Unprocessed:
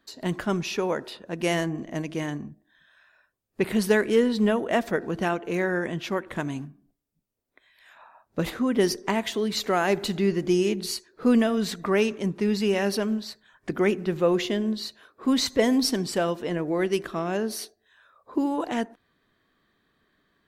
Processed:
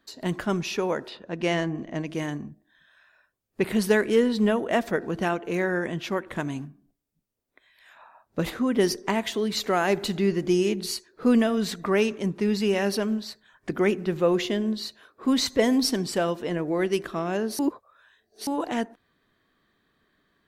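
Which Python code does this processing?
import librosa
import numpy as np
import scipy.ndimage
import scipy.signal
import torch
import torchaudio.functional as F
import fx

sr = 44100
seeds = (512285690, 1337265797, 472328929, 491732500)

y = fx.lowpass(x, sr, hz=5100.0, slope=12, at=(1.08, 2.07))
y = fx.edit(y, sr, fx.reverse_span(start_s=17.59, length_s=0.88), tone=tone)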